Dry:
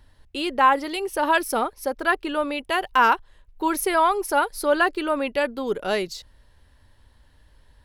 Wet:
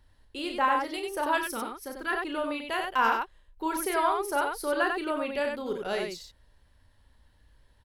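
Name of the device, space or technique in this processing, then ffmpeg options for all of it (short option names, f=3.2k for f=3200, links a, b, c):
slapback doubling: -filter_complex "[0:a]asplit=3[a][b][c];[b]adelay=35,volume=-7dB[d];[c]adelay=94,volume=-4.5dB[e];[a][d][e]amix=inputs=3:normalize=0,asettb=1/sr,asplit=3[f][g][h];[f]atrim=end=1.374[i];[g]atrim=start=1.37:end=2.13,asetpts=PTS-STARTPTS,afade=t=in:d=0.004:c=qsin,afade=t=out:st=0.756:d=0.004:c=qsin,equalizer=f=670:w=1.6:g=-11[j];[h]atrim=start=2.126[k];[i][j]acrossfade=d=0.004:c1=hsin:c2=qsin[l];[l][k]acrossfade=d=0.004:c1=qsin:c2=hsin,volume=-8dB"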